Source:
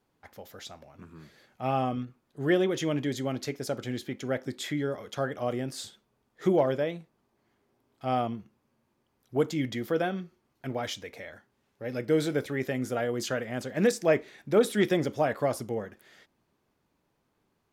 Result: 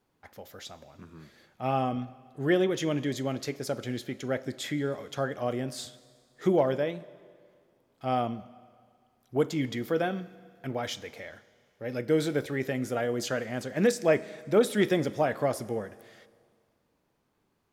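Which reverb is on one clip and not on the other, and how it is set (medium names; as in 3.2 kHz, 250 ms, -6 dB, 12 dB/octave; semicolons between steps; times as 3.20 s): Schroeder reverb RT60 2 s, combs from 29 ms, DRR 17.5 dB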